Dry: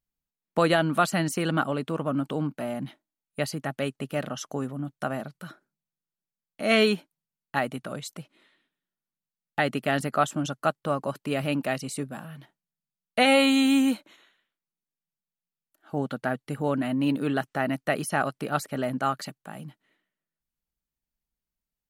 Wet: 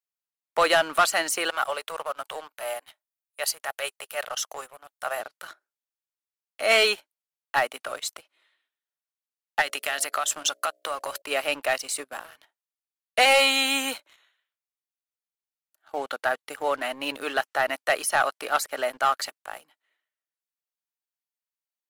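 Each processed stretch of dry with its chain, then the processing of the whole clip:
0:01.50–0:05.20: high-pass filter 450 Hz 24 dB per octave + high-shelf EQ 8,200 Hz +10 dB + transient designer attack −8 dB, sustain −4 dB
0:09.61–0:11.22: downward compressor 8 to 1, threshold −29 dBFS + high-shelf EQ 2,100 Hz +9.5 dB + hum removal 61.89 Hz, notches 11
whole clip: Bessel high-pass filter 720 Hz, order 4; leveller curve on the samples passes 2

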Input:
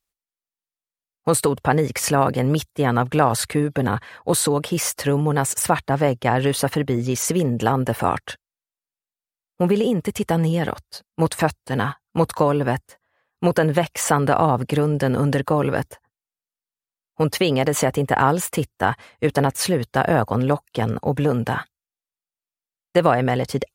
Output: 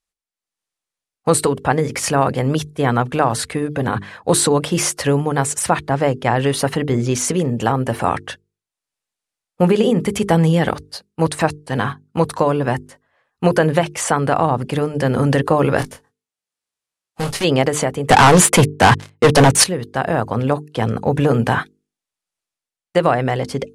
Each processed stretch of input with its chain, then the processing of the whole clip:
0:15.78–0:17.43: spectral envelope flattened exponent 0.6 + tube saturation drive 23 dB, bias 0.5 + double-tracking delay 24 ms −6 dB
0:18.09–0:19.64: high-pass filter 100 Hz 24 dB per octave + leveller curve on the samples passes 5
whole clip: low-pass filter 11,000 Hz 24 dB per octave; mains-hum notches 50/100/150/200/250/300/350/400/450 Hz; automatic gain control; level −1 dB

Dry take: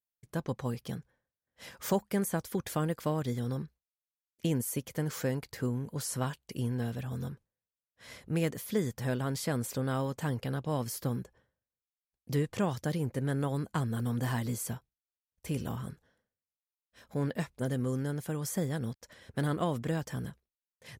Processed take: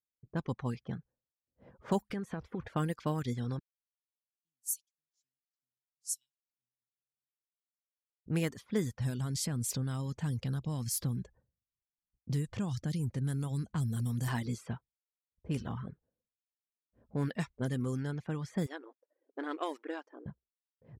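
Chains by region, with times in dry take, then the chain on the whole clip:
0:02.10–0:02.68: converter with a step at zero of −45.5 dBFS + parametric band 480 Hz +3.5 dB 0.29 octaves + downward compressor 20 to 1, threshold −31 dBFS
0:03.59–0:08.26: inverse Chebyshev high-pass filter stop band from 1,400 Hz, stop band 70 dB + multiband upward and downward expander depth 70%
0:09.00–0:14.28: downward compressor 2 to 1, threshold −44 dBFS + bass and treble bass +11 dB, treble +14 dB
0:18.66–0:20.26: mu-law and A-law mismatch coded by A + linear-phase brick-wall high-pass 270 Hz
whole clip: low-pass that shuts in the quiet parts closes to 360 Hz, open at −27 dBFS; reverb reduction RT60 0.51 s; dynamic equaliser 550 Hz, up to −5 dB, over −48 dBFS, Q 1.9

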